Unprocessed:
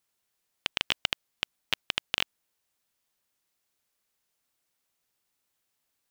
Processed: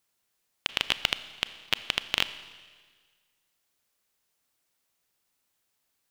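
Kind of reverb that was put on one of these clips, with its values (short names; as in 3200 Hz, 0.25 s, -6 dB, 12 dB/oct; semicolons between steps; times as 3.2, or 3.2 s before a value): Schroeder reverb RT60 1.6 s, combs from 28 ms, DRR 13 dB; gain +2 dB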